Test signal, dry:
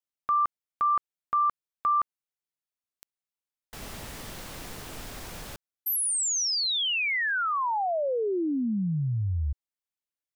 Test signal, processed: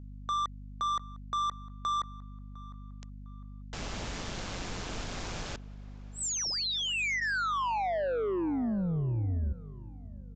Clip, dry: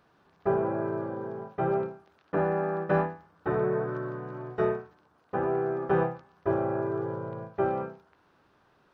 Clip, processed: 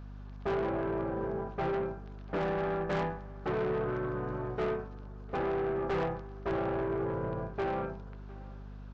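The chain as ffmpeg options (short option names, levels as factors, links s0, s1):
-filter_complex "[0:a]bandreject=f=1900:w=24,tremolo=f=180:d=0.462,aresample=16000,asoftclip=type=tanh:threshold=0.0282,aresample=44100,aeval=exprs='val(0)+0.00355*(sin(2*PI*50*n/s)+sin(2*PI*2*50*n/s)/2+sin(2*PI*3*50*n/s)/3+sin(2*PI*4*50*n/s)/4+sin(2*PI*5*50*n/s)/5)':c=same,alimiter=level_in=2.66:limit=0.0631:level=0:latency=1,volume=0.376,asplit=2[s0][s1];[s1]adelay=705,lowpass=f=2400:p=1,volume=0.1,asplit=2[s2][s3];[s3]adelay=705,lowpass=f=2400:p=1,volume=0.38,asplit=2[s4][s5];[s5]adelay=705,lowpass=f=2400:p=1,volume=0.38[s6];[s2][s4][s6]amix=inputs=3:normalize=0[s7];[s0][s7]amix=inputs=2:normalize=0,volume=1.88"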